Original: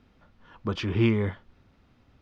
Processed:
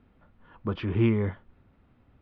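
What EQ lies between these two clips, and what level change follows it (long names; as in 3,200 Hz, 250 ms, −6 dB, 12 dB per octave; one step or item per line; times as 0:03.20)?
high-frequency loss of the air 370 metres
0.0 dB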